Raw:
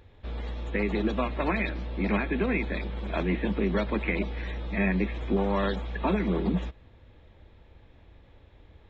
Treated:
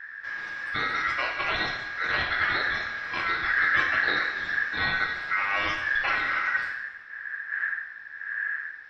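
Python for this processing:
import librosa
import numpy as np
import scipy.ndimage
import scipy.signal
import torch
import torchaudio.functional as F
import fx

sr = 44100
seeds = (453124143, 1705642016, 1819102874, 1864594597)

y = fx.dmg_wind(x, sr, seeds[0], corner_hz=98.0, level_db=-33.0)
y = y * np.sin(2.0 * np.pi * 1700.0 * np.arange(len(y)) / sr)
y = fx.rev_double_slope(y, sr, seeds[1], early_s=0.85, late_s=3.1, knee_db=-22, drr_db=0.0)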